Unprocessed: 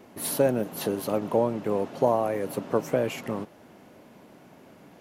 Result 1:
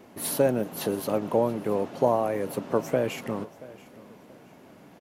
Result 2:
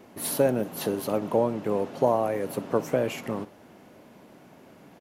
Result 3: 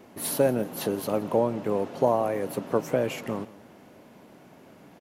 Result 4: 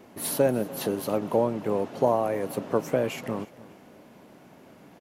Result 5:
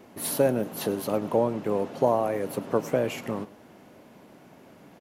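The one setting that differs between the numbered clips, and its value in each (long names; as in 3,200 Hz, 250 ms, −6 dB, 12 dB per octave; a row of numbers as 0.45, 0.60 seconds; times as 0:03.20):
repeating echo, delay time: 681, 63, 170, 297, 104 milliseconds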